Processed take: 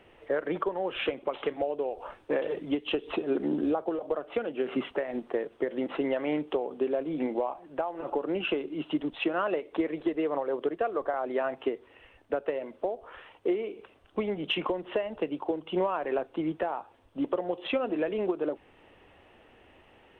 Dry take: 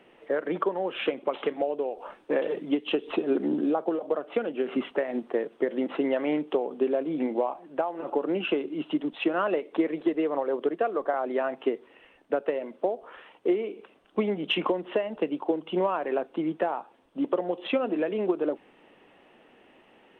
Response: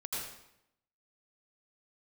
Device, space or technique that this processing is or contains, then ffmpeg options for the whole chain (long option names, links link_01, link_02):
car stereo with a boomy subwoofer: -af "lowshelf=frequency=130:width_type=q:width=1.5:gain=12.5,alimiter=limit=-18dB:level=0:latency=1:release=316"